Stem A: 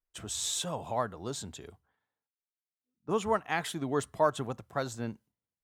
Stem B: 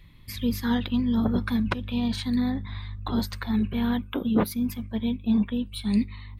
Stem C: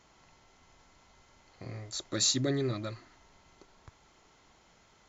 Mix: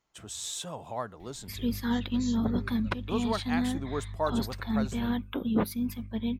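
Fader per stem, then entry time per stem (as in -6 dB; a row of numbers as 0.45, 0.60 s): -3.5, -4.0, -17.0 dB; 0.00, 1.20, 0.00 s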